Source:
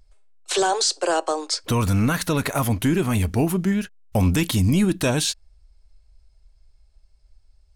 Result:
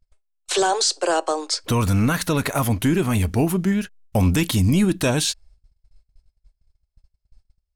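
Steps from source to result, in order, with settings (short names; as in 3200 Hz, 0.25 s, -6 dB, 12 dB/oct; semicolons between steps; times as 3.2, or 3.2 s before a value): gate -49 dBFS, range -22 dB; gain +1 dB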